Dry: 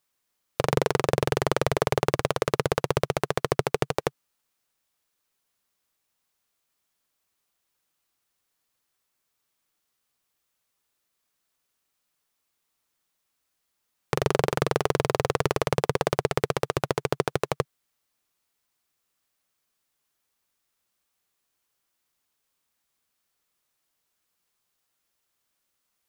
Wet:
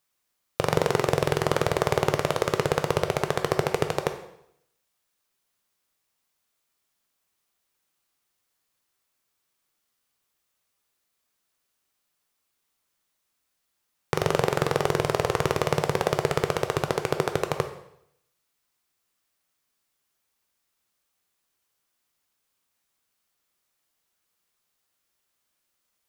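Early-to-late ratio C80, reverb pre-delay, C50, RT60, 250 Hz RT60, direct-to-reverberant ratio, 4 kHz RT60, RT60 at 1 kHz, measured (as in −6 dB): 12.5 dB, 6 ms, 9.5 dB, 0.75 s, 0.75 s, 6.5 dB, 0.70 s, 0.75 s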